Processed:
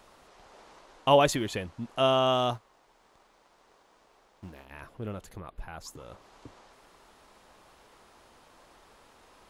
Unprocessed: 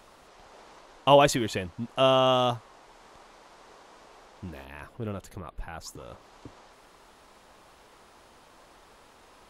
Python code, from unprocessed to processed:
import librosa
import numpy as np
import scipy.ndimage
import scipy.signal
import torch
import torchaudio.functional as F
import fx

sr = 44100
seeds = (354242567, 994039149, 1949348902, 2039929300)

y = fx.law_mismatch(x, sr, coded='A', at=(2.56, 4.71))
y = F.gain(torch.from_numpy(y), -2.5).numpy()